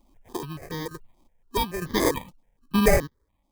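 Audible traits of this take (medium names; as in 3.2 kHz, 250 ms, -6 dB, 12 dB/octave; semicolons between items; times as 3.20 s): chopped level 1.1 Hz, depth 65%, duty 40%; aliases and images of a low sample rate 1.4 kHz, jitter 0%; notches that jump at a steady rate 7 Hz 450–2500 Hz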